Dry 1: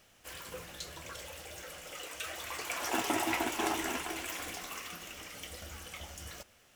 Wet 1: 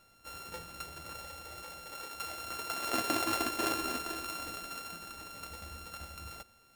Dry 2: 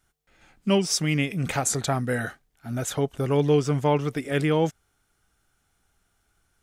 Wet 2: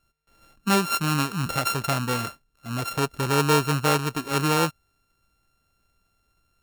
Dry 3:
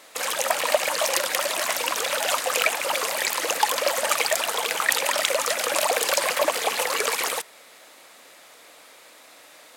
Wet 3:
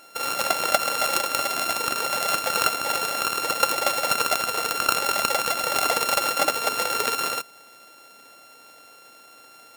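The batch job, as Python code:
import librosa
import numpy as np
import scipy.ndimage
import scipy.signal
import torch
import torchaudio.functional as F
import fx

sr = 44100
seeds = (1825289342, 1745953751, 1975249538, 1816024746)

y = np.r_[np.sort(x[:len(x) // 32 * 32].reshape(-1, 32), axis=1).ravel(), x[len(x) // 32 * 32:]]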